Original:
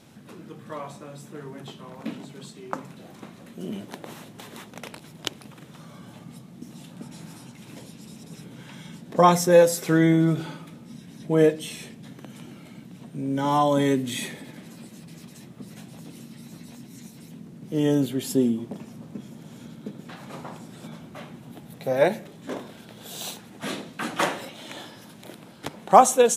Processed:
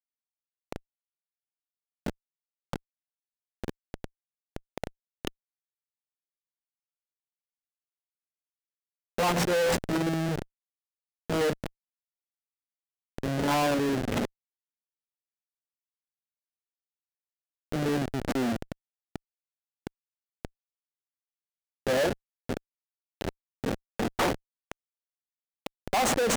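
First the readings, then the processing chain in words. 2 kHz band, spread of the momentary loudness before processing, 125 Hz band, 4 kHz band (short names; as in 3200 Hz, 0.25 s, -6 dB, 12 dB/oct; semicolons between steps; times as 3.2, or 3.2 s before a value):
-1.5 dB, 24 LU, -6.0 dB, -2.0 dB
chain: Schmitt trigger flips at -25 dBFS; overdrive pedal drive 35 dB, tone 7300 Hz, clips at -20.5 dBFS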